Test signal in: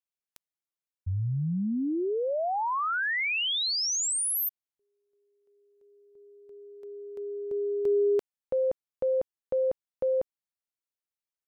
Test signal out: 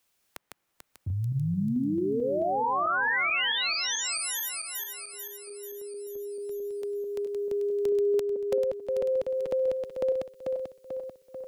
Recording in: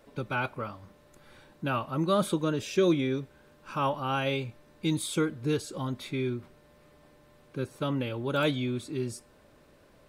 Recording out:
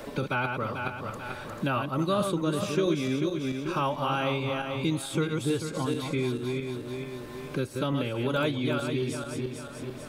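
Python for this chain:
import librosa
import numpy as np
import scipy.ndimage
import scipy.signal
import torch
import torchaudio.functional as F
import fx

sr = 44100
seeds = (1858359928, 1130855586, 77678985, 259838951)

y = fx.reverse_delay_fb(x, sr, ms=220, feedback_pct=55, wet_db=-5.0)
y = fx.band_squash(y, sr, depth_pct=70)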